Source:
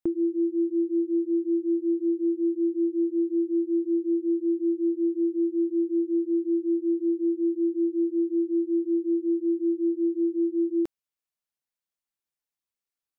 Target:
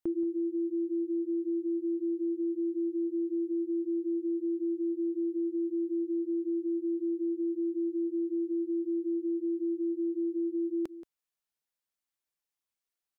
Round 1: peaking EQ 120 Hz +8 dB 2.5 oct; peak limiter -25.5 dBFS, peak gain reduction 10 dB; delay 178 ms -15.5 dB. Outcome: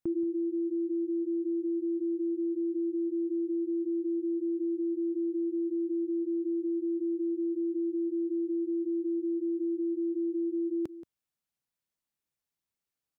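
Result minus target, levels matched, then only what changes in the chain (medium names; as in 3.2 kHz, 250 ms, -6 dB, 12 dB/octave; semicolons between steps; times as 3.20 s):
125 Hz band +4.5 dB
change: peaking EQ 120 Hz -3.5 dB 2.5 oct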